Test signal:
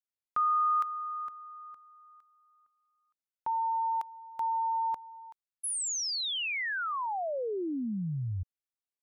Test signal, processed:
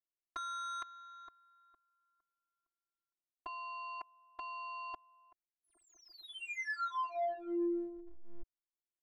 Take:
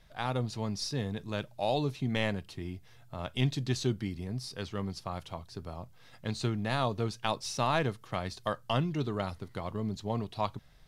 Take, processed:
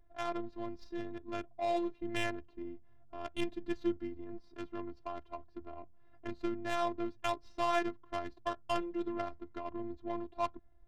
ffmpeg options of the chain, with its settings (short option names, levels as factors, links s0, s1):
-af "adynamicsmooth=sensitivity=3:basefreq=800,afftfilt=real='hypot(re,im)*cos(PI*b)':imag='0':win_size=512:overlap=0.75,volume=1.12"